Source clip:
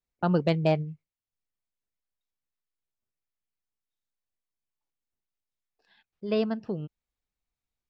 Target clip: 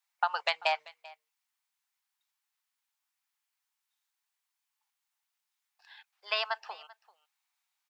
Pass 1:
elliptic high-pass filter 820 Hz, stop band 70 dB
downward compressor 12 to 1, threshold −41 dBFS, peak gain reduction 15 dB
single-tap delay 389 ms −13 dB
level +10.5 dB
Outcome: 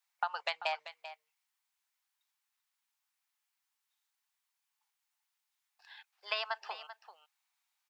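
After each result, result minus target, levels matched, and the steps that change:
downward compressor: peak gain reduction +6.5 dB; echo-to-direct +8.5 dB
change: downward compressor 12 to 1, threshold −34 dBFS, peak gain reduction 8.5 dB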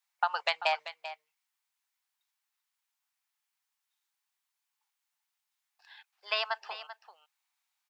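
echo-to-direct +8.5 dB
change: single-tap delay 389 ms −21.5 dB

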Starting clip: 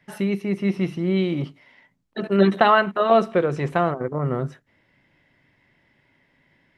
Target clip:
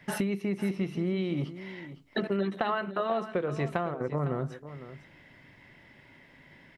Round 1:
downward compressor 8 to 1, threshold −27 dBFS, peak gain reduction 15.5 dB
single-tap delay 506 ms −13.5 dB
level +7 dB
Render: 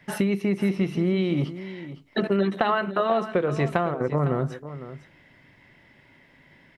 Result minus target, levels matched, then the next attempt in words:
downward compressor: peak gain reduction −6.5 dB
downward compressor 8 to 1, threshold −34.5 dBFS, peak gain reduction 22.5 dB
single-tap delay 506 ms −13.5 dB
level +7 dB

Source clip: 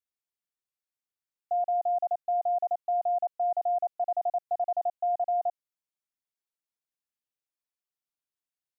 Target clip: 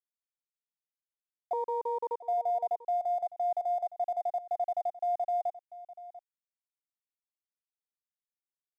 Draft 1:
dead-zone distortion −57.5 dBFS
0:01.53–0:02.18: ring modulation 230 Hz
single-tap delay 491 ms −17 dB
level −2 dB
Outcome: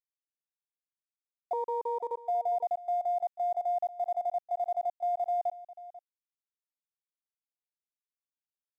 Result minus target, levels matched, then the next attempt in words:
echo 201 ms early
dead-zone distortion −57.5 dBFS
0:01.53–0:02.18: ring modulation 230 Hz
single-tap delay 692 ms −17 dB
level −2 dB

